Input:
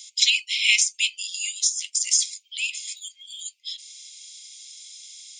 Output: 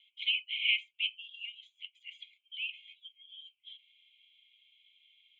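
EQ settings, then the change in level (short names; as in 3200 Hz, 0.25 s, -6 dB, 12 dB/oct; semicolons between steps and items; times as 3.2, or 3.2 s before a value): vowel filter u; synth low-pass 3100 Hz, resonance Q 13; fixed phaser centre 2300 Hz, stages 4; -5.0 dB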